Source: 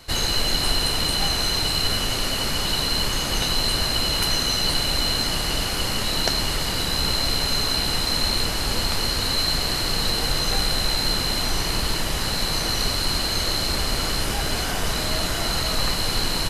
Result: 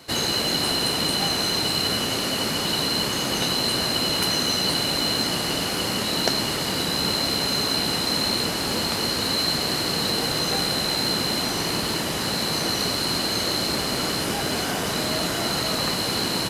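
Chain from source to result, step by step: high-pass 220 Hz 12 dB/octave; bass shelf 350 Hz +10.5 dB; in parallel at -8 dB: short-mantissa float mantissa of 2-bit; on the sum: trim -3.5 dB

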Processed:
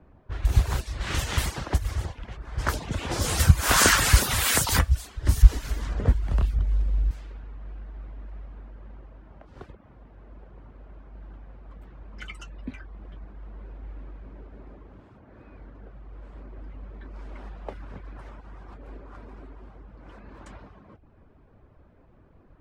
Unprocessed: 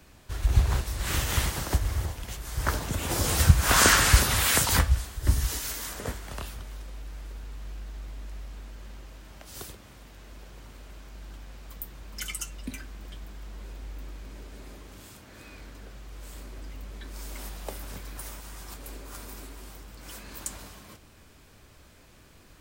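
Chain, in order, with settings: reverb removal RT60 0.52 s; 5.42–7.11 s: RIAA curve playback; level-controlled noise filter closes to 890 Hz, open at -22 dBFS; trim +1.5 dB

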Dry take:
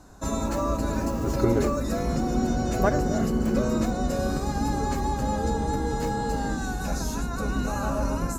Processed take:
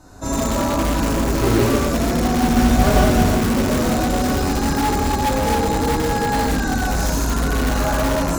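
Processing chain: 2.46–3.29 s: bass shelf 130 Hz +8 dB; gated-style reverb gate 240 ms flat, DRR -7 dB; in parallel at -5.5 dB: integer overflow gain 14 dB; on the sum: trim -2 dB

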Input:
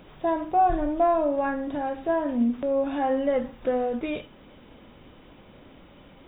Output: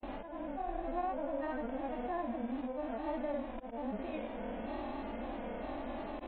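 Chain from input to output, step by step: spectral levelling over time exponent 0.4; slow attack 501 ms; granulator, pitch spread up and down by 3 st; compression, threshold -27 dBFS, peak gain reduction 10.5 dB; harmonic-percussive split percussive -18 dB; tape noise reduction on one side only decoder only; trim -5.5 dB

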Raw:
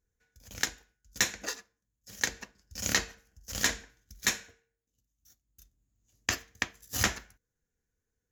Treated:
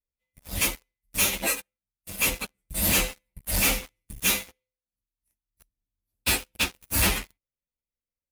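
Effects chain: frequency axis rescaled in octaves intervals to 118%; waveshaping leveller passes 5

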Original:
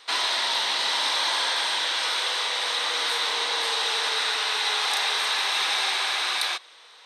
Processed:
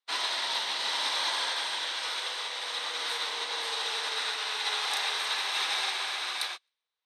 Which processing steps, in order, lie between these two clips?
on a send: feedback echo behind a high-pass 131 ms, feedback 51%, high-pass 2 kHz, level -18 dB; on the sum: upward expansion 2.5:1, over -48 dBFS; trim -4 dB

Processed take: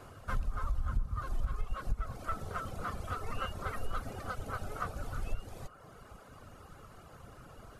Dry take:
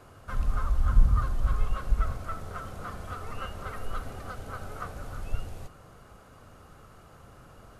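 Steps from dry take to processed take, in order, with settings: reverb removal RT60 0.88 s; compression 16:1, threshold -29 dBFS, peak gain reduction 17.5 dB; on a send: feedback echo behind a band-pass 114 ms, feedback 83%, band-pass 720 Hz, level -19 dB; on the sum: trim +1.5 dB

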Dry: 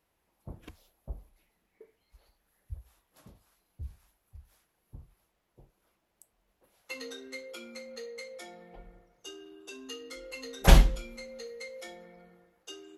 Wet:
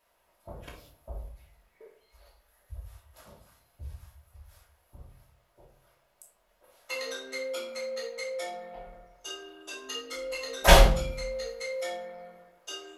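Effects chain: resonant low shelf 420 Hz -9 dB, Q 1.5; reverberation RT60 0.50 s, pre-delay 3 ms, DRR -2.5 dB; trim +3 dB

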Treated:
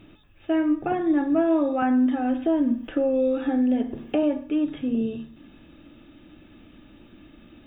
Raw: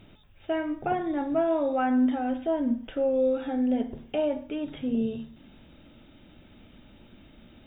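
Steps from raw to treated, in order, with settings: small resonant body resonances 310/1200/1700/2600 Hz, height 10 dB; 1.82–4.23 s: three bands compressed up and down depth 70%

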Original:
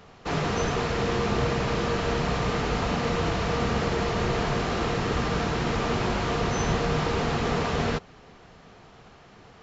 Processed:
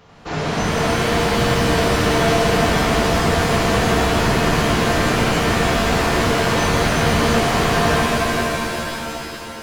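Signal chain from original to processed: pitch-shifted reverb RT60 3.2 s, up +7 st, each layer -2 dB, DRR -5 dB

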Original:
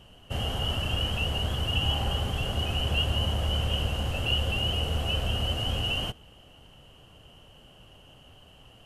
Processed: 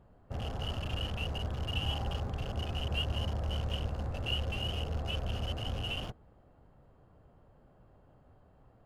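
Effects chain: local Wiener filter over 15 samples; trim -6 dB

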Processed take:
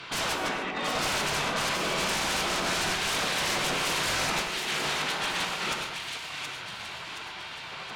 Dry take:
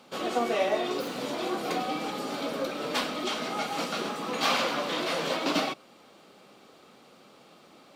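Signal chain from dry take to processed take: low-pass 3.5 kHz 12 dB/octave; spectral gate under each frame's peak -10 dB weak; compressor with a negative ratio -41 dBFS, ratio -0.5; sine folder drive 12 dB, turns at -27.5 dBFS; on a send: two-band feedback delay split 1.9 kHz, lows 88 ms, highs 723 ms, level -5.5 dB; on the sum: gated-style reverb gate 170 ms flat, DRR 4.5 dB

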